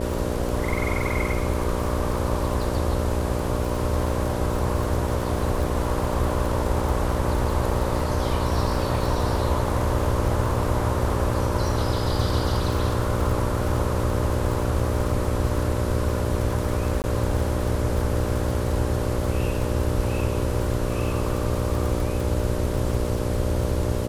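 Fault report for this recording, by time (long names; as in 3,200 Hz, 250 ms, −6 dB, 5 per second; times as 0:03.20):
mains buzz 60 Hz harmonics 10 −28 dBFS
surface crackle 48 per second −28 dBFS
0:17.02–0:17.04: drop-out 19 ms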